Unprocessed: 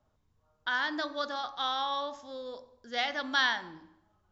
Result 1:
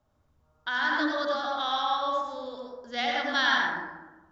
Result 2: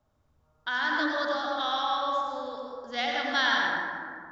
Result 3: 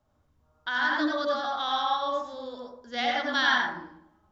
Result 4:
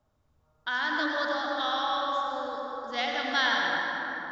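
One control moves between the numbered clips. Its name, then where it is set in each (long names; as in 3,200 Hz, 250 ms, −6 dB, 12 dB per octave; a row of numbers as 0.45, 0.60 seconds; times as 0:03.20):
dense smooth reverb, RT60: 1.1, 2.3, 0.51, 4.9 seconds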